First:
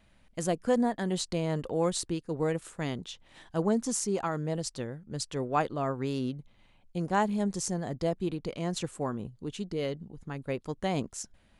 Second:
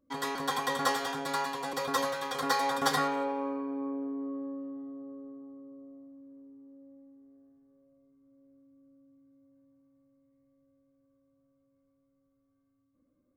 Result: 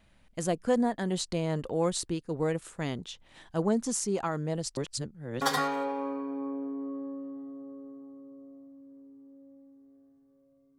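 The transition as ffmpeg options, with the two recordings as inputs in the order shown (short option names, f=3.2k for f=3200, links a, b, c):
-filter_complex "[0:a]apad=whole_dur=10.78,atrim=end=10.78,asplit=2[a][b];[a]atrim=end=4.772[c];[b]atrim=start=4.768:end=5.412,asetpts=PTS-STARTPTS,areverse[d];[1:a]atrim=start=2.808:end=8.18[e];[c][d]acrossfade=d=0.004:c1=hsin:c2=hsin[f];[f][e]acrossfade=d=0.004:c1=hsin:c2=hsin"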